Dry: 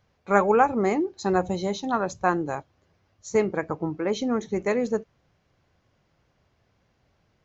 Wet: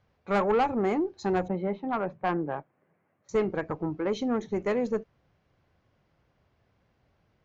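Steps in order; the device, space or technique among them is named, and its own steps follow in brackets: 1.48–3.29 Chebyshev band-pass 150–2200 Hz, order 3; air absorption 55 m; tube preamp driven hard (tube stage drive 17 dB, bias 0.2; high shelf 4900 Hz -6.5 dB); gain -1 dB

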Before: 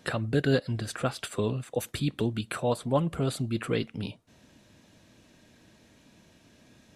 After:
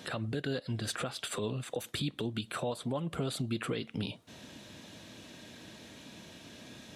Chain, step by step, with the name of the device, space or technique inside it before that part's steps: broadcast voice chain (HPF 120 Hz 6 dB/oct; de-esser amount 65%; compressor 4:1, threshold -40 dBFS, peak gain reduction 16.5 dB; bell 3500 Hz +5 dB 0.59 oct; limiter -32 dBFS, peak gain reduction 11.5 dB); gain +8 dB

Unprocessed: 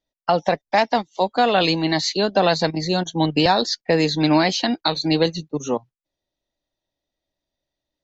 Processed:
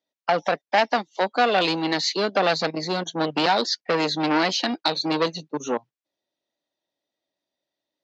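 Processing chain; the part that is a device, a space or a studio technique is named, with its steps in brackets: public-address speaker with an overloaded transformer (core saturation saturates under 1300 Hz; BPF 230–6600 Hz)

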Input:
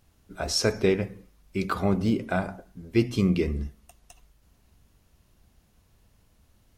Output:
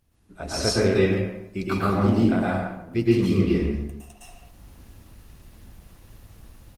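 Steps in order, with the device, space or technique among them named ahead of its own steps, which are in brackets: low shelf 320 Hz +2.5 dB; speakerphone in a meeting room (reverb RT60 0.75 s, pre-delay 0.106 s, DRR -6 dB; speakerphone echo 0.14 s, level -8 dB; AGC gain up to 13.5 dB; gain -6 dB; Opus 24 kbps 48000 Hz)

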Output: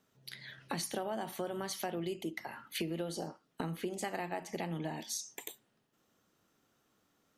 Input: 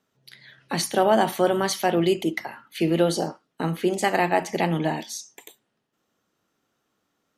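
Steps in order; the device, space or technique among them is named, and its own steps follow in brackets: ASMR close-microphone chain (low shelf 170 Hz +4.5 dB; compressor 6:1, threshold -35 dBFS, peak gain reduction 19.5 dB; high shelf 7400 Hz +4.5 dB); gain -1 dB

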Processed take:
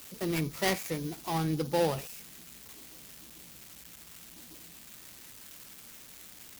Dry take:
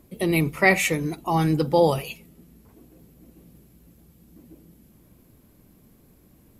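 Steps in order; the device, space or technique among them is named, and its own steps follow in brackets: budget class-D amplifier (switching dead time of 0.19 ms; switching spikes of -20 dBFS); gain -9 dB

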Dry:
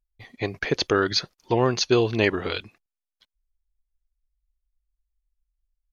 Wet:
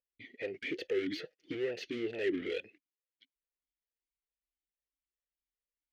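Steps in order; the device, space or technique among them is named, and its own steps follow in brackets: talk box (tube stage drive 31 dB, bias 0.35; vowel sweep e-i 2.3 Hz); 1.11–1.55 comb 6.4 ms, depth 51%; gain +8.5 dB

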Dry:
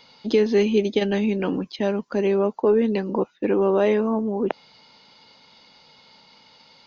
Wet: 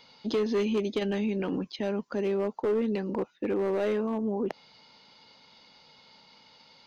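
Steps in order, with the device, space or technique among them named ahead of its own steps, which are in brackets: clipper into limiter (hard clip -14.5 dBFS, distortion -17 dB; limiter -18 dBFS, peak gain reduction 3.5 dB); gain -4 dB

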